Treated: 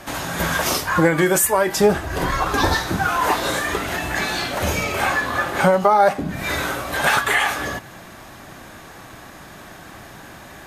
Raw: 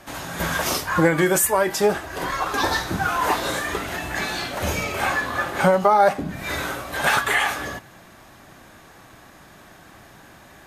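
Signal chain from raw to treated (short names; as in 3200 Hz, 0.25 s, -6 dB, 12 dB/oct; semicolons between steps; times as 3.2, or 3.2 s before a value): 1.76–2.75 low shelf 200 Hz +11.5 dB; in parallel at +2 dB: compressor, threshold -32 dBFS, peak gain reduction 19 dB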